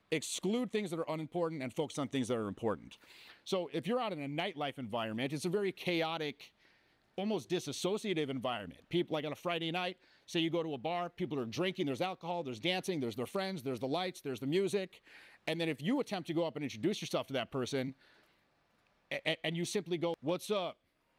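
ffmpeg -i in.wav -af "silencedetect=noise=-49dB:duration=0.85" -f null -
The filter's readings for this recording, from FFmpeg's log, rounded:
silence_start: 17.92
silence_end: 19.11 | silence_duration: 1.19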